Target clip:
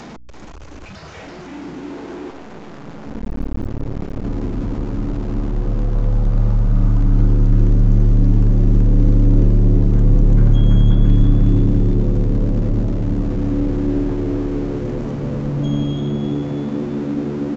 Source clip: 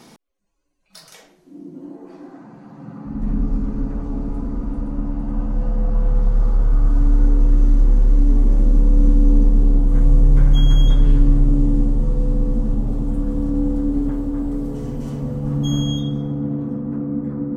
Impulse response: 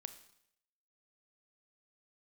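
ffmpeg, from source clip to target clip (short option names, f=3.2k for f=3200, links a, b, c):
-filter_complex "[0:a]aeval=exprs='val(0)+0.5*0.0398*sgn(val(0))':c=same,acrossover=split=340|2600[a][b][c];[c]acompressor=threshold=-47dB:ratio=6[d];[a][b][d]amix=inputs=3:normalize=0,aeval=exprs='val(0)+0.00447*(sin(2*PI*60*n/s)+sin(2*PI*2*60*n/s)/2+sin(2*PI*3*60*n/s)/3+sin(2*PI*4*60*n/s)/4+sin(2*PI*5*60*n/s)/5)':c=same,asplit=2[e][f];[f]asplit=5[g][h][i][j][k];[g]adelay=335,afreqshift=74,volume=-6dB[l];[h]adelay=670,afreqshift=148,volume=-12.9dB[m];[i]adelay=1005,afreqshift=222,volume=-19.9dB[n];[j]adelay=1340,afreqshift=296,volume=-26.8dB[o];[k]adelay=1675,afreqshift=370,volume=-33.7dB[p];[l][m][n][o][p]amix=inputs=5:normalize=0[q];[e][q]amix=inputs=2:normalize=0,asettb=1/sr,asplit=3[r][s][t];[r]atrim=end=2.304[u];[s]atrim=start=2.3:end=4.24,asetpts=PTS-STARTPTS,afade=t=in:d=0.004:c=qsin,afade=t=out:st=1.936:d=0.004:c=qsin,aeval=exprs='max(val(0),0)':c=same[v];[t]atrim=start=4.236[w];[u][v]acrossfade=d=0.004:c1=hsin:c2=qsin[x];[x][w]acrossfade=d=0.004:c1=qsin:c2=hsin,aresample=16000,aresample=44100,volume=-1.5dB"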